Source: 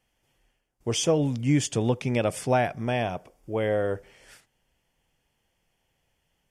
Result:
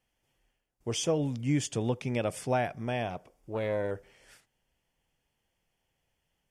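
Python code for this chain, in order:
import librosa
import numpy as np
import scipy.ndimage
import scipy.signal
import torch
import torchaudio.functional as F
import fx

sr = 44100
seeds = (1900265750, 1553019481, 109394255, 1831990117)

y = fx.doppler_dist(x, sr, depth_ms=0.25, at=(3.1, 3.91))
y = F.gain(torch.from_numpy(y), -5.5).numpy()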